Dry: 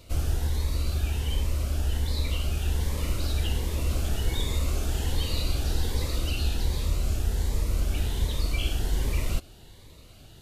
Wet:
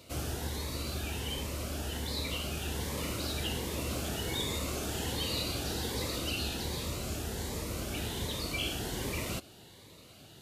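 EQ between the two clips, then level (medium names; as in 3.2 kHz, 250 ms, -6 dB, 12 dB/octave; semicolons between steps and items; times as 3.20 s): high-pass 140 Hz 12 dB/octave; 0.0 dB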